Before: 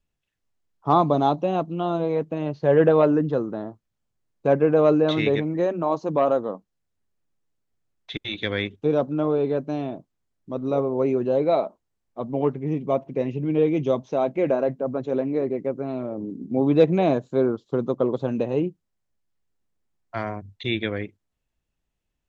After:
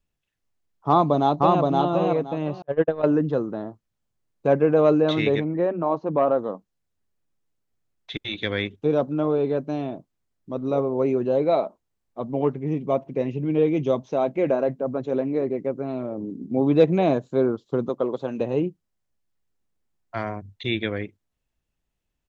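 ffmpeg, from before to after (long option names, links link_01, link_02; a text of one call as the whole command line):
ffmpeg -i in.wav -filter_complex "[0:a]asplit=2[link_01][link_02];[link_02]afade=type=in:start_time=0.88:duration=0.01,afade=type=out:start_time=1.61:duration=0.01,aecho=0:1:520|1040|1560:0.841395|0.168279|0.0336558[link_03];[link_01][link_03]amix=inputs=2:normalize=0,asettb=1/sr,asplit=3[link_04][link_05][link_06];[link_04]atrim=end=2.624[link_07];[link_05]atrim=start=2.62:end=3.04,asetpts=PTS-STARTPTS,afade=type=in:duration=0.004:curve=qsin,afade=type=out:start_time=0.416:duration=0.004:curve=qsin,agate=range=-52dB:threshold=-15dB:ratio=16:release=100:detection=peak[link_08];[link_06]atrim=start=3.036[link_09];[link_07][link_08]acrossfade=duration=0.004:curve1=hsin:curve2=qsin[link_10];[link_10][link_09]acrossfade=duration=0.004:curve1=qsin:curve2=hsin,asettb=1/sr,asplit=3[link_11][link_12][link_13];[link_11]atrim=end=5.444[link_14];[link_12]atrim=start=5.44:end=6.39,asetpts=PTS-STARTPTS,afade=type=in:duration=0.004:curve=qsin,afade=type=out:start_time=0.946:duration=0.004:curve=qsin,lowpass=2300[link_15];[link_13]atrim=start=6.386[link_16];[link_14][link_15]acrossfade=duration=0.004:curve1=hsin:curve2=qsin[link_17];[link_17][link_16]acrossfade=duration=0.004:curve1=qsin:curve2=hsin,asettb=1/sr,asplit=3[link_18][link_19][link_20];[link_18]atrim=end=17.894[link_21];[link_19]atrim=start=17.89:end=18.41,asetpts=PTS-STARTPTS,afade=type=in:duration=0.004:curve=qsin,afade=type=out:start_time=0.516:duration=0.004:curve=qsin,highpass=frequency=350:poles=1[link_22];[link_20]atrim=start=18.406[link_23];[link_21][link_22]acrossfade=duration=0.004:curve1=hsin:curve2=qsin[link_24];[link_24][link_23]acrossfade=duration=0.004:curve1=qsin:curve2=hsin" out.wav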